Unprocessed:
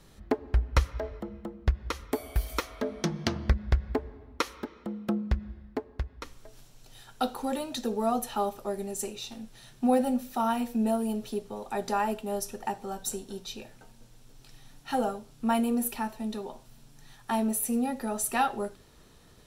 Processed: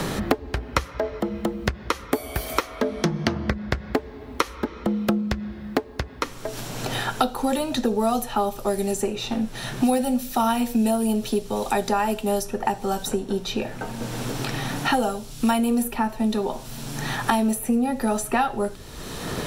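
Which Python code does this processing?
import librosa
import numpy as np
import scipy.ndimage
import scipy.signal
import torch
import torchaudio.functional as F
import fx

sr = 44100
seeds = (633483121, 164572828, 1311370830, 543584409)

y = fx.band_squash(x, sr, depth_pct=100)
y = F.gain(torch.from_numpy(y), 7.0).numpy()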